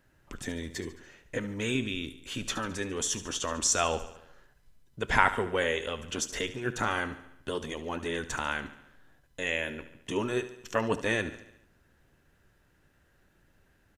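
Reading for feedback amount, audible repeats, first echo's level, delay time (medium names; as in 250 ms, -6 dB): 56%, 5, -14.0 dB, 72 ms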